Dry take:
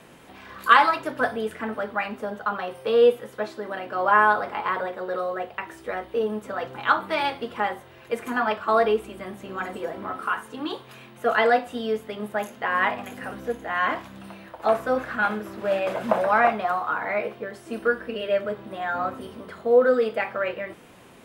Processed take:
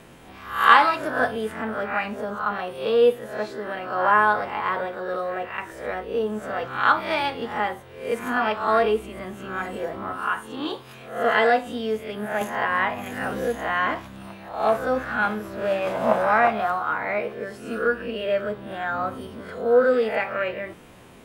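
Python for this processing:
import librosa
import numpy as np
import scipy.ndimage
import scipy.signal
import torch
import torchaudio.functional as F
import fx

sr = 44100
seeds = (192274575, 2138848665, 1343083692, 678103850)

y = fx.spec_swells(x, sr, rise_s=0.51)
y = fx.low_shelf(y, sr, hz=92.0, db=10.0)
y = fx.band_squash(y, sr, depth_pct=70, at=(12.41, 13.95))
y = y * librosa.db_to_amplitude(-1.0)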